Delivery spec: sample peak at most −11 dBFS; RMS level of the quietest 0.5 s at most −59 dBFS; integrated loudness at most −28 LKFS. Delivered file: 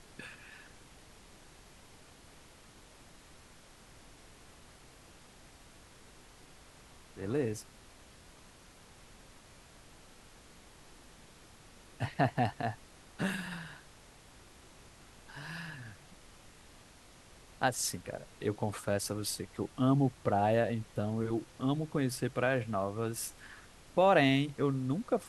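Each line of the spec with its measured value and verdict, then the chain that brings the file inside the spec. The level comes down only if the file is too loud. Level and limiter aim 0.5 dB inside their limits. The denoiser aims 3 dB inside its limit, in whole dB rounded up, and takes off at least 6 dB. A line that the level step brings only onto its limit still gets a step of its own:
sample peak −13.5 dBFS: in spec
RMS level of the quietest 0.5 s −57 dBFS: out of spec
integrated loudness −33.0 LKFS: in spec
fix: broadband denoise 6 dB, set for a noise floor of −57 dBFS

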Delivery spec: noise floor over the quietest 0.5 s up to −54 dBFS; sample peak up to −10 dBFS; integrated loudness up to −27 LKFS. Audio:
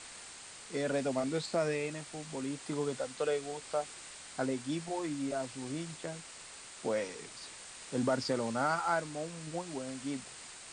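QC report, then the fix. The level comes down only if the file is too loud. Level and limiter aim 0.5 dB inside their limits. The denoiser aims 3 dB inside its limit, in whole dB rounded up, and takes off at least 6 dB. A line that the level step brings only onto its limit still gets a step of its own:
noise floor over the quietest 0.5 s −50 dBFS: out of spec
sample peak −19.0 dBFS: in spec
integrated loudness −36.5 LKFS: in spec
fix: broadband denoise 7 dB, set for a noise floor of −50 dBFS

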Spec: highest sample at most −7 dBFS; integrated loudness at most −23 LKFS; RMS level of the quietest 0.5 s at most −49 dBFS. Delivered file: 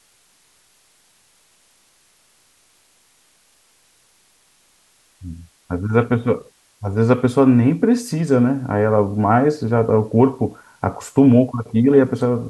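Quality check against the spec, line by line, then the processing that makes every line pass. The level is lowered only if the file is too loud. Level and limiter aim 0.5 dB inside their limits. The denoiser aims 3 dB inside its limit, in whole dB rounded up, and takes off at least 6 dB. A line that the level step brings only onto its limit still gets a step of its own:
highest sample −2.0 dBFS: out of spec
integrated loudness −17.5 LKFS: out of spec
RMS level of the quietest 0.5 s −58 dBFS: in spec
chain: level −6 dB

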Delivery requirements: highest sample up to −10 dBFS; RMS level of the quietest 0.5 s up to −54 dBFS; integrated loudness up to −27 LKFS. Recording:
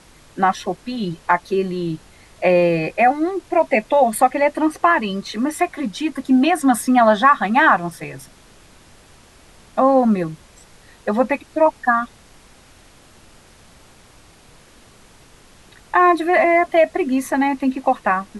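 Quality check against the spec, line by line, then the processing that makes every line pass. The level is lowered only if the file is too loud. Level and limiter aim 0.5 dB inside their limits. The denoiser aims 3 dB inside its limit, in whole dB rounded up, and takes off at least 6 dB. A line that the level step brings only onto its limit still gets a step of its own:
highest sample −2.0 dBFS: out of spec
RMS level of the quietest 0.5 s −48 dBFS: out of spec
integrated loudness −18.0 LKFS: out of spec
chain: level −9.5 dB

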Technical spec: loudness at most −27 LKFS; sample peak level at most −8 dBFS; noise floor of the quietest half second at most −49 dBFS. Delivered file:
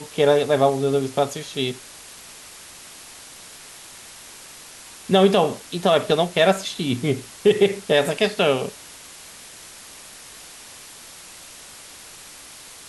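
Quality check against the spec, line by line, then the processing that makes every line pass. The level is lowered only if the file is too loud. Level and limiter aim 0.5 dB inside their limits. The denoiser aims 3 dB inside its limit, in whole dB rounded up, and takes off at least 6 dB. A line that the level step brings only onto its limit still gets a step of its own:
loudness −20.5 LKFS: out of spec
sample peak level −5.5 dBFS: out of spec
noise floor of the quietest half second −42 dBFS: out of spec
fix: broadband denoise 6 dB, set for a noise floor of −42 dBFS
level −7 dB

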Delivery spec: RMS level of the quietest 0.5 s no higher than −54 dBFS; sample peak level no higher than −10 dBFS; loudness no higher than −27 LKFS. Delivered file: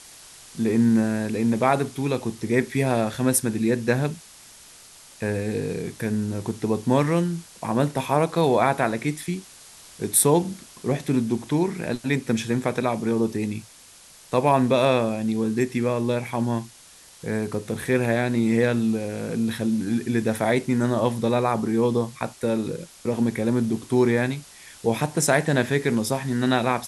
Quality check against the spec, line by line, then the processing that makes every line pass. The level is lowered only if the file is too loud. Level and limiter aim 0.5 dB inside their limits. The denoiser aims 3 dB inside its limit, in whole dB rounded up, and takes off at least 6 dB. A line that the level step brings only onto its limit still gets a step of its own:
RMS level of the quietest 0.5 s −49 dBFS: out of spec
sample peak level −5.5 dBFS: out of spec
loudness −23.5 LKFS: out of spec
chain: broadband denoise 6 dB, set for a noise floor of −49 dBFS
level −4 dB
brickwall limiter −10.5 dBFS

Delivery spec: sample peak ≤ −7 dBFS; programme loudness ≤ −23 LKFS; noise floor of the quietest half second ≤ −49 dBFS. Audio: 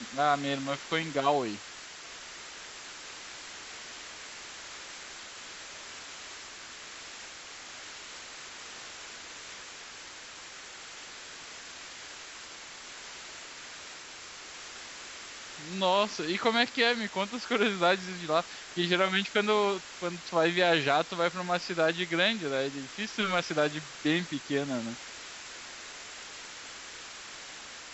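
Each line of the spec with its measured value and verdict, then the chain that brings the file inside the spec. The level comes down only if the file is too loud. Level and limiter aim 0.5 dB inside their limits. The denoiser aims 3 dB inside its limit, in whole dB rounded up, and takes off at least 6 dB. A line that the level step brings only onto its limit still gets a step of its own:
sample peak −11.0 dBFS: in spec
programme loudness −31.5 LKFS: in spec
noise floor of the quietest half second −46 dBFS: out of spec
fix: broadband denoise 6 dB, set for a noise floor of −46 dBFS

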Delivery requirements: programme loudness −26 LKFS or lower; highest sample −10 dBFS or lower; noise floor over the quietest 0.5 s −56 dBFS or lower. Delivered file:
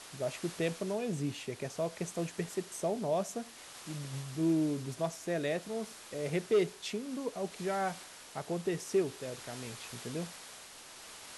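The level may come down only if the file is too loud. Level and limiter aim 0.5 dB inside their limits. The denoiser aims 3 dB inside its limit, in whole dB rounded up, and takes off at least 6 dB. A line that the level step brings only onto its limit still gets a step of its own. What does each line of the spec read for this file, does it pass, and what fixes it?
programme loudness −36.0 LKFS: in spec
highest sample −18.5 dBFS: in spec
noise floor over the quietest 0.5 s −51 dBFS: out of spec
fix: broadband denoise 8 dB, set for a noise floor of −51 dBFS

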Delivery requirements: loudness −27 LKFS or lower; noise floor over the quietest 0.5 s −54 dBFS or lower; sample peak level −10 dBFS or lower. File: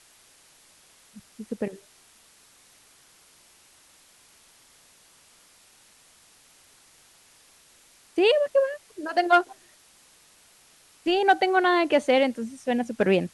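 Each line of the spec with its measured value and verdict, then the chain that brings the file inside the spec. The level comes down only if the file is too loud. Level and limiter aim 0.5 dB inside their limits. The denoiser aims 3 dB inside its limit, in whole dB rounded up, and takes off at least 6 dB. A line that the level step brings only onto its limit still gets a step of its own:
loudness −23.5 LKFS: out of spec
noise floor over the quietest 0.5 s −57 dBFS: in spec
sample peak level −8.0 dBFS: out of spec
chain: level −4 dB

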